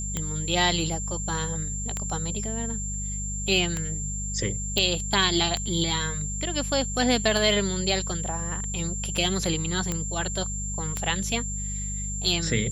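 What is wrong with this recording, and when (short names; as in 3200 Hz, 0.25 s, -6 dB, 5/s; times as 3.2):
hum 50 Hz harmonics 4 -33 dBFS
tick 33 1/3 rpm -13 dBFS
tone 7300 Hz -32 dBFS
4.78 pop -9 dBFS
9.92 pop -13 dBFS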